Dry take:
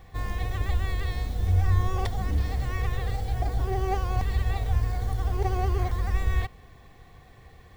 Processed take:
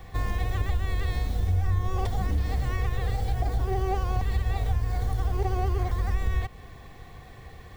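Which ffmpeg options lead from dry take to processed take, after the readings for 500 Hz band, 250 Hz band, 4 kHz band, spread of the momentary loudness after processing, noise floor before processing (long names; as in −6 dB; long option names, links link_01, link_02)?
0.0 dB, +0.5 dB, −1.0 dB, 19 LU, −51 dBFS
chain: -filter_complex "[0:a]acrossover=split=260|950[link_01][link_02][link_03];[link_03]asoftclip=type=tanh:threshold=-36dB[link_04];[link_01][link_02][link_04]amix=inputs=3:normalize=0,acompressor=threshold=-29dB:ratio=3,volume=5.5dB"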